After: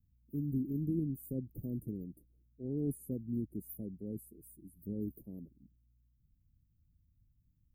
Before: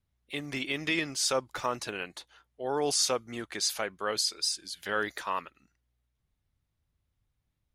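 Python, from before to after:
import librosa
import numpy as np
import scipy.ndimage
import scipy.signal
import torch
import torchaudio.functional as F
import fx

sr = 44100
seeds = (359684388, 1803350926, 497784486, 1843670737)

y = scipy.signal.sosfilt(scipy.signal.cheby2(4, 70, [990.0, 5800.0], 'bandstop', fs=sr, output='sos'), x)
y = y * librosa.db_to_amplitude(7.5)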